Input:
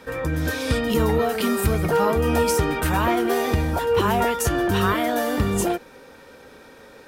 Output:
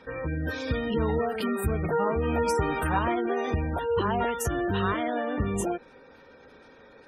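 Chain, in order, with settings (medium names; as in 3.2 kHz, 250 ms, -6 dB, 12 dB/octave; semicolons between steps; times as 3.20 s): 4.91–5.45 s: low-pass 4.2 kHz 12 dB/octave; spectral gate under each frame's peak -25 dB strong; 2.46–2.99 s: dynamic bell 1 kHz, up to +5 dB, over -35 dBFS, Q 0.86; trim -6 dB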